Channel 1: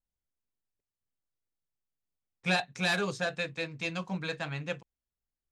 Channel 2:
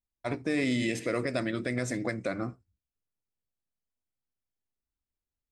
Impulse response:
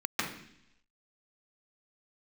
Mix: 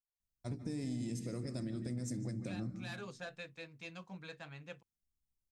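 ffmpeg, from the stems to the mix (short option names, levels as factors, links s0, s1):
-filter_complex "[0:a]volume=0.2,afade=t=in:st=2.8:d=0.32:silence=0.473151[s0];[1:a]firequalizer=gain_entry='entry(190,0);entry(270,-9);entry(640,-19);entry(2200,-24);entry(5200,-5)':delay=0.05:min_phase=1,asoftclip=type=tanh:threshold=0.0501,adelay=200,volume=1.33,asplit=2[s1][s2];[s2]volume=0.133[s3];[2:a]atrim=start_sample=2205[s4];[s3][s4]afir=irnorm=-1:irlink=0[s5];[s0][s1][s5]amix=inputs=3:normalize=0,acompressor=threshold=0.0141:ratio=4"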